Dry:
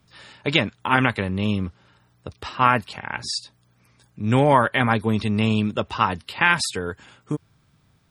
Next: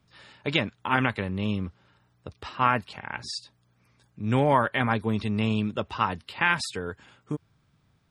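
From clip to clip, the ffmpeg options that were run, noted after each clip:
-af "highshelf=f=7.8k:g=-8,volume=-5dB"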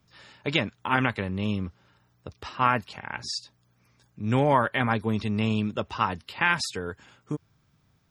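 -af "aexciter=amount=1.6:drive=3.2:freq=5.3k"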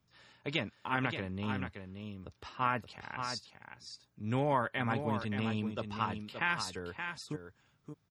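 -af "aecho=1:1:574:0.422,volume=-9dB"

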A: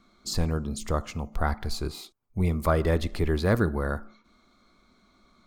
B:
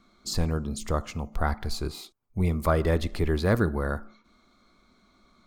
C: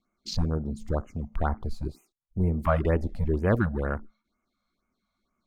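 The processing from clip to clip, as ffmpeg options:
-af anull
-af "afwtdn=0.0178,afftfilt=real='re*(1-between(b*sr/1024,310*pow(4400/310,0.5+0.5*sin(2*PI*2.1*pts/sr))/1.41,310*pow(4400/310,0.5+0.5*sin(2*PI*2.1*pts/sr))*1.41))':imag='im*(1-between(b*sr/1024,310*pow(4400/310,0.5+0.5*sin(2*PI*2.1*pts/sr))/1.41,310*pow(4400/310,0.5+0.5*sin(2*PI*2.1*pts/sr))*1.41))':win_size=1024:overlap=0.75"

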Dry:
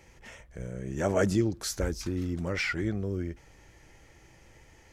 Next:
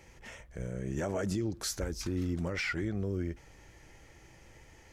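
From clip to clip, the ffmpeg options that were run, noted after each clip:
-af "alimiter=level_in=0.5dB:limit=-24dB:level=0:latency=1:release=137,volume=-0.5dB"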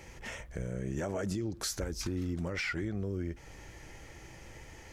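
-af "acompressor=threshold=-41dB:ratio=2.5,volume=6dB"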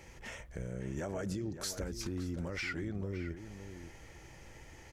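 -filter_complex "[0:a]asplit=2[a][b];[b]adelay=565.6,volume=-10dB,highshelf=f=4k:g=-12.7[c];[a][c]amix=inputs=2:normalize=0,volume=-3.5dB"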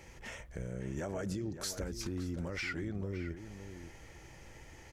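-af anull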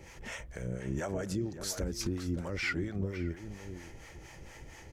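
-filter_complex "[0:a]acrossover=split=550[a][b];[a]aeval=exprs='val(0)*(1-0.7/2+0.7/2*cos(2*PI*4.3*n/s))':c=same[c];[b]aeval=exprs='val(0)*(1-0.7/2-0.7/2*cos(2*PI*4.3*n/s))':c=same[d];[c][d]amix=inputs=2:normalize=0,volume=6.5dB"

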